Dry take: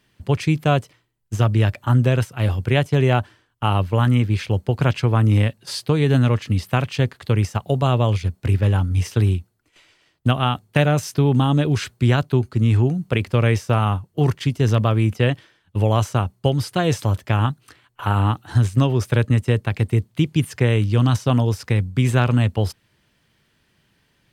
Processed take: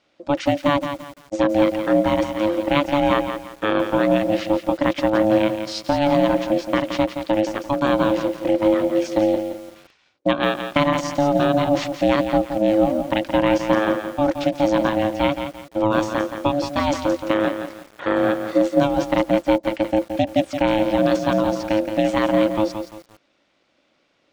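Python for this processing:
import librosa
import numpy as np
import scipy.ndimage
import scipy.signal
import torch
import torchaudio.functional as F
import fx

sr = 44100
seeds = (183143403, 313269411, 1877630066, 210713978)

y = scipy.signal.sosfilt(scipy.signal.butter(4, 6700.0, 'lowpass', fs=sr, output='sos'), x)
y = y * np.sin(2.0 * np.pi * 430.0 * np.arange(len(y)) / sr)
y = fx.low_shelf(y, sr, hz=68.0, db=-12.0)
y = fx.echo_crushed(y, sr, ms=171, feedback_pct=35, bits=7, wet_db=-8.0)
y = F.gain(torch.from_numpy(y), 2.0).numpy()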